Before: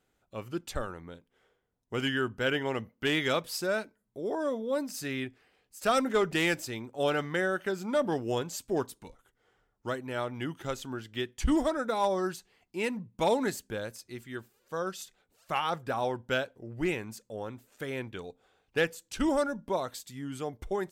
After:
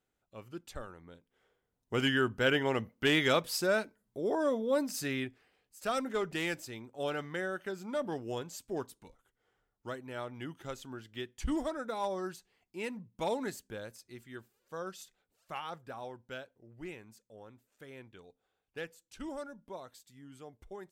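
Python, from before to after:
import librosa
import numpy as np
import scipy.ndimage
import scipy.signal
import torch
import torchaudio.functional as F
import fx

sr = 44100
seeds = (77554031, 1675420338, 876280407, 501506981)

y = fx.gain(x, sr, db=fx.line((0.96, -9.0), (1.95, 1.0), (4.98, 1.0), (5.86, -7.0), (15.02, -7.0), (16.21, -14.0)))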